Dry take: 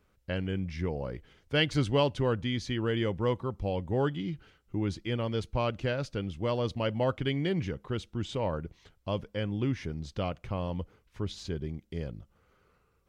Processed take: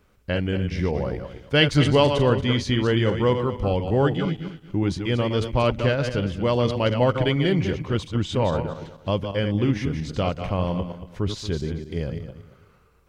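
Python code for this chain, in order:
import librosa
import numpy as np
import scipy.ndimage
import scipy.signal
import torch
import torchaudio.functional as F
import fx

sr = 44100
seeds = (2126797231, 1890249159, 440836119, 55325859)

y = fx.reverse_delay_fb(x, sr, ms=115, feedback_pct=46, wet_db=-7.0)
y = y * 10.0 ** (8.0 / 20.0)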